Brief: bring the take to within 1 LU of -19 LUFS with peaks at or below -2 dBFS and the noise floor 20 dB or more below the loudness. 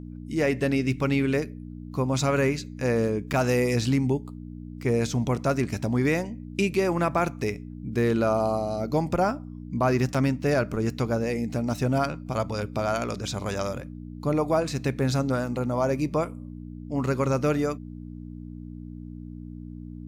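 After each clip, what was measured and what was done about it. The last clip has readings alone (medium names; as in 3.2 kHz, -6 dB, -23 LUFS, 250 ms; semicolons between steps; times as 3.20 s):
dropouts 2; longest dropout 5.8 ms; hum 60 Hz; highest harmonic 300 Hz; hum level -37 dBFS; loudness -26.5 LUFS; peak level -11.0 dBFS; loudness target -19.0 LUFS
-> interpolate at 3.33/10.14 s, 5.8 ms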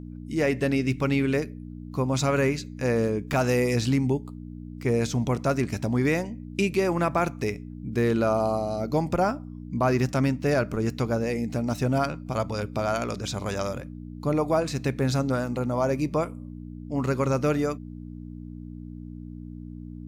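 dropouts 0; hum 60 Hz; highest harmonic 300 Hz; hum level -37 dBFS
-> de-hum 60 Hz, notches 5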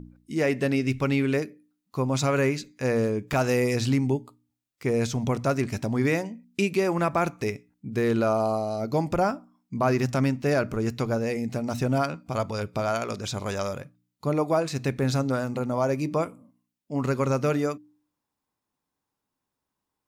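hum not found; loudness -26.5 LUFS; peak level -11.5 dBFS; loudness target -19.0 LUFS
-> trim +7.5 dB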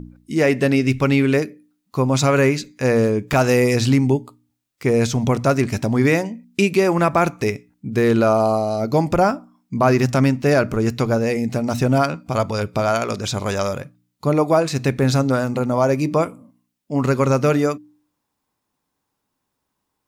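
loudness -19.0 LUFS; peak level -4.0 dBFS; noise floor -77 dBFS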